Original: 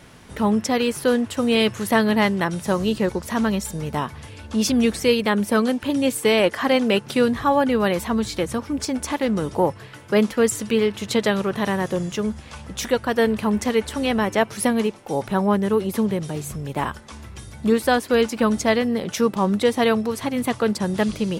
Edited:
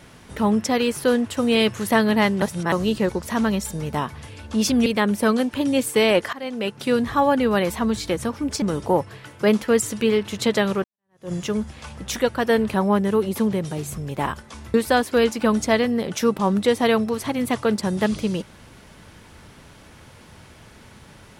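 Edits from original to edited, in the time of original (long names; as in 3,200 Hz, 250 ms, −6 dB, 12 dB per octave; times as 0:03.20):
0:02.42–0:02.72: reverse
0:04.86–0:05.15: remove
0:06.62–0:07.38: fade in, from −20 dB
0:08.91–0:09.31: remove
0:11.53–0:12.01: fade in exponential
0:13.43–0:15.32: remove
0:17.32–0:17.71: remove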